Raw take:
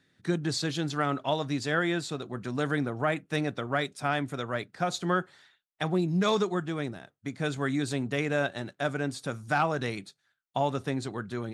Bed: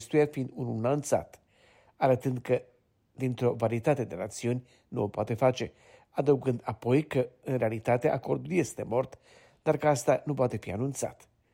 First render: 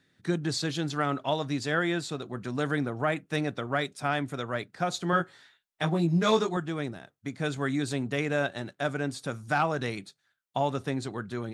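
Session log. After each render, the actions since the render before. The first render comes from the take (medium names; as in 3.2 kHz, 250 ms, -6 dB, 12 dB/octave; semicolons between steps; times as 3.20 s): 5.11–6.57 s: doubling 18 ms -2.5 dB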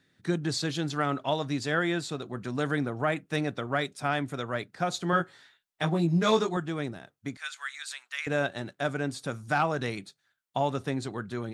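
7.37–8.27 s: high-pass 1.3 kHz 24 dB/octave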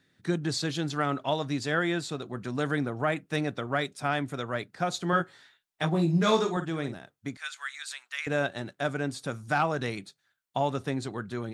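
5.89–6.95 s: doubling 49 ms -10 dB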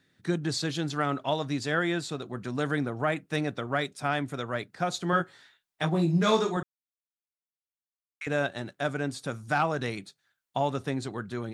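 6.63–8.21 s: mute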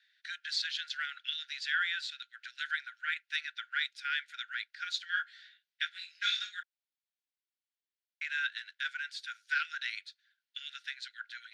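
Chebyshev high-pass 1.4 kHz, order 10; resonant high shelf 6.2 kHz -13.5 dB, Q 1.5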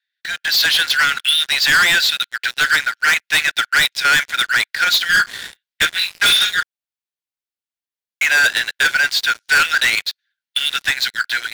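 waveshaping leveller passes 5; level rider gain up to 9 dB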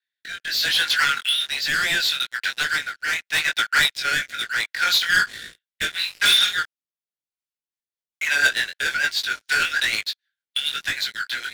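rotary cabinet horn 0.75 Hz, later 6.7 Hz, at 7.22 s; chorus 1.1 Hz, delay 18.5 ms, depth 4.8 ms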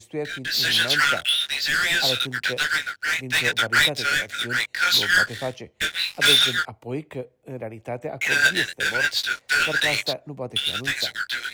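add bed -5 dB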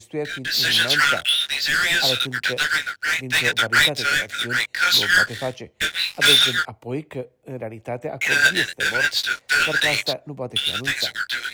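trim +2 dB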